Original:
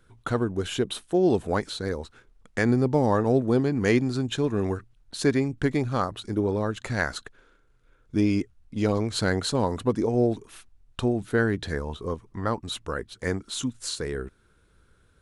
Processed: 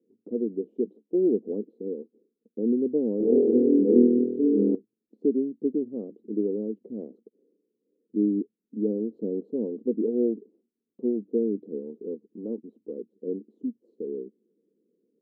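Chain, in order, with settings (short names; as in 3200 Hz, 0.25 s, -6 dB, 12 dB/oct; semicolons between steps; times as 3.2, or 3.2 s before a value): elliptic band-pass 210–470 Hz, stop band 60 dB; 3.18–4.75 flutter echo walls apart 4.2 m, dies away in 1.4 s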